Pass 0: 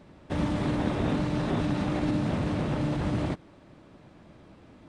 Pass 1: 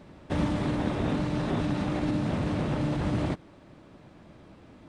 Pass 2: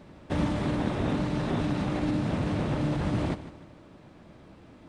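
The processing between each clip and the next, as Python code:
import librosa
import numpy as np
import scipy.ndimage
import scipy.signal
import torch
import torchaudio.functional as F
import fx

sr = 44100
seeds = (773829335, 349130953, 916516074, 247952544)

y1 = fx.rider(x, sr, range_db=3, speed_s=0.5)
y2 = fx.echo_feedback(y1, sr, ms=153, feedback_pct=40, wet_db=-14.0)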